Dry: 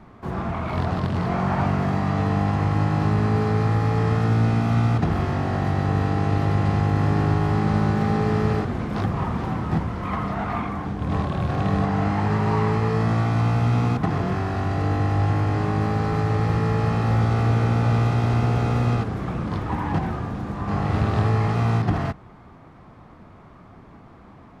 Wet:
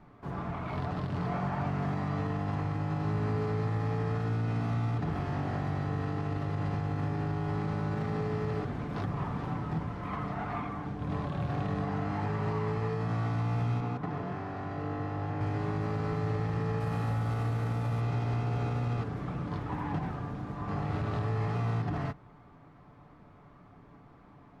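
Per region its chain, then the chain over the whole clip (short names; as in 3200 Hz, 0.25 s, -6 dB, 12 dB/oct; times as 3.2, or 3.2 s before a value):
13.8–15.41 HPF 650 Hz 6 dB/oct + tilt -3 dB/oct
16.8–18.01 CVSD 64 kbps + notch 370 Hz, Q 6
whole clip: high shelf 5600 Hz -5 dB; comb 6.9 ms, depth 39%; limiter -14.5 dBFS; gain -9 dB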